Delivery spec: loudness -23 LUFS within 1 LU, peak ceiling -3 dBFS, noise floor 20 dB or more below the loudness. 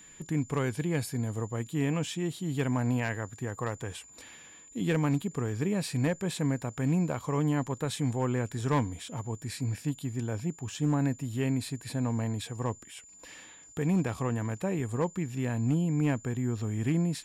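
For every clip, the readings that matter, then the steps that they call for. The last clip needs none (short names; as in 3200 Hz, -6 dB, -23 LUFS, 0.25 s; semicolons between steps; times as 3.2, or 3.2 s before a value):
clipped 0.3%; flat tops at -20.5 dBFS; steady tone 7100 Hz; tone level -51 dBFS; loudness -31.0 LUFS; peak -20.5 dBFS; loudness target -23.0 LUFS
-> clip repair -20.5 dBFS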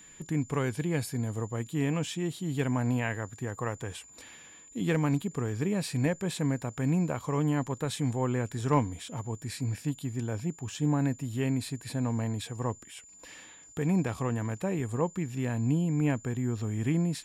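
clipped 0.0%; steady tone 7100 Hz; tone level -51 dBFS
-> notch 7100 Hz, Q 30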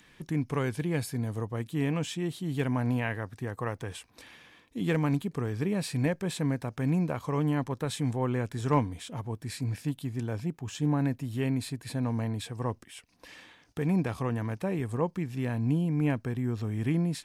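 steady tone none; loudness -31.0 LUFS; peak -12.5 dBFS; loudness target -23.0 LUFS
-> gain +8 dB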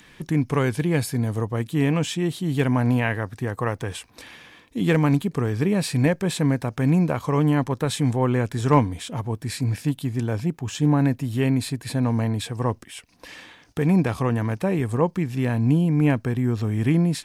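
loudness -23.0 LUFS; peak -4.5 dBFS; noise floor -54 dBFS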